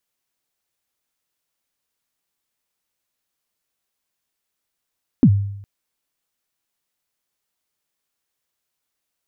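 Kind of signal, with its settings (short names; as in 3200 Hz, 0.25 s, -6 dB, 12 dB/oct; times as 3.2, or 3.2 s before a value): kick drum length 0.41 s, from 300 Hz, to 100 Hz, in 66 ms, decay 0.78 s, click off, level -5.5 dB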